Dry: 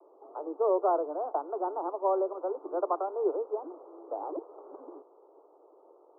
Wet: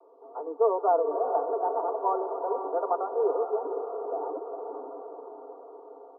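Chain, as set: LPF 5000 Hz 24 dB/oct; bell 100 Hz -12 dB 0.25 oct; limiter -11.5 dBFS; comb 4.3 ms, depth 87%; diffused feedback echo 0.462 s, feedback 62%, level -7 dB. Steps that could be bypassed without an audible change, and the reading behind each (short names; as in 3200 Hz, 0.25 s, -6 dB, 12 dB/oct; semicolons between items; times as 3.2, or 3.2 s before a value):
LPF 5000 Hz: input band ends at 1400 Hz; bell 100 Hz: input band starts at 270 Hz; limiter -11.5 dBFS: input peak -16.0 dBFS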